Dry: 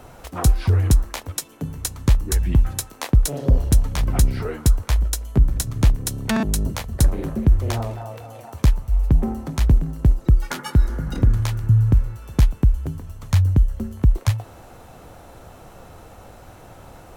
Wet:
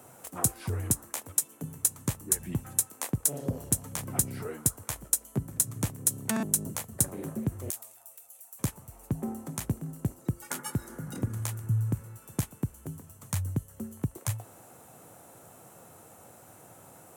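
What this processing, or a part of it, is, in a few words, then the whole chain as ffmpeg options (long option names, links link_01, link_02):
budget condenser microphone: -filter_complex "[0:a]highpass=frequency=110:width=0.5412,highpass=frequency=110:width=1.3066,highshelf=frequency=6200:width_type=q:width=1.5:gain=10.5,asettb=1/sr,asplit=3[link_01][link_02][link_03];[link_01]atrim=end=7.704[link_04];[link_02]atrim=start=7.7:end=8.59,asetpts=PTS-STARTPTS,afade=type=in:duration=0.004:curve=qsin,afade=type=out:start_time=0.886:duration=0.004:curve=qsin,aderivative[link_05];[link_03]atrim=start=8.586[link_06];[link_04][link_05]acrossfade=duration=0.004:curve1=hsin:curve2=qsin[link_07];[link_07][link_06]acrossfade=duration=0.004:curve1=qsin:curve2=hsin,volume=-9dB"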